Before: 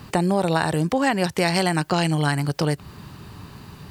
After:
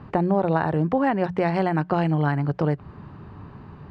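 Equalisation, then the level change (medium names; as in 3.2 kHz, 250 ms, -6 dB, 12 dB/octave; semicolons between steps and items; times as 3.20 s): low-pass 1.4 kHz 12 dB/octave; hum notches 60/120/180 Hz; 0.0 dB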